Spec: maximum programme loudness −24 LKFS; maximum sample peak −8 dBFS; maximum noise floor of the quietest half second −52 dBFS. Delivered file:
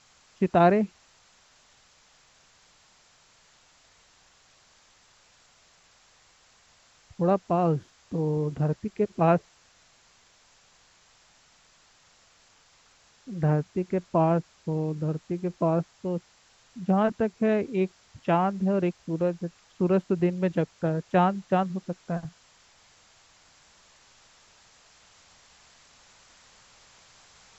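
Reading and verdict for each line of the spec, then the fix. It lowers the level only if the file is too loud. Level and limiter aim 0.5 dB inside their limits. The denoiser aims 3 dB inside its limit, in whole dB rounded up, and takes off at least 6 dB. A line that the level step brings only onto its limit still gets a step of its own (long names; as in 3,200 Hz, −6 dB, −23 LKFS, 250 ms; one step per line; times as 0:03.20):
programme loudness −27.0 LKFS: in spec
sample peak −9.5 dBFS: in spec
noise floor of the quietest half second −60 dBFS: in spec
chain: no processing needed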